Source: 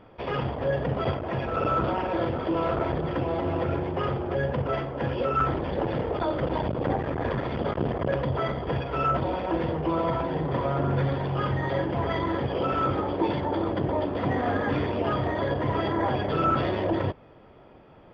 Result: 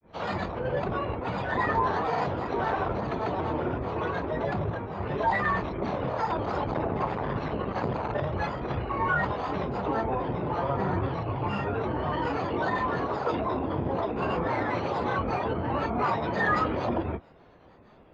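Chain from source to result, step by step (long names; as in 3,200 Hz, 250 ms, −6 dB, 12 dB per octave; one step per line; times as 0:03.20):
granular cloud 162 ms, grains 20 per second, pitch spread up and down by 7 semitones
dynamic equaliser 1,000 Hz, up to +5 dB, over −47 dBFS, Q 1.8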